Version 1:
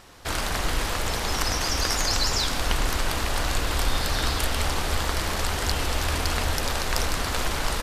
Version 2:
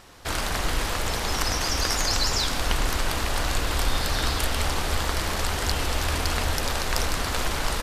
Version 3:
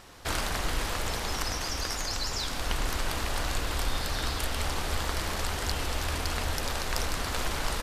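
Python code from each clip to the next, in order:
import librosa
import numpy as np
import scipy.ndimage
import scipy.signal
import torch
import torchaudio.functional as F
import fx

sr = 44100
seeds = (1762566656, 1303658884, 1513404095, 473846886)

y1 = x
y2 = fx.rider(y1, sr, range_db=10, speed_s=0.5)
y2 = y2 * 10.0 ** (-5.5 / 20.0)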